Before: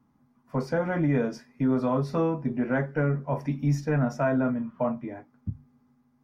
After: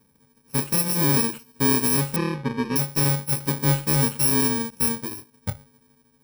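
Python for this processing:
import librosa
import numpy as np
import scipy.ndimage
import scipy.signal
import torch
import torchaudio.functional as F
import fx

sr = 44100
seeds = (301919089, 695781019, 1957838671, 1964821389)

y = fx.bit_reversed(x, sr, seeds[0], block=64)
y = fx.lowpass(y, sr, hz=2800.0, slope=12, at=(2.16, 2.76))
y = F.gain(torch.from_numpy(y), 4.0).numpy()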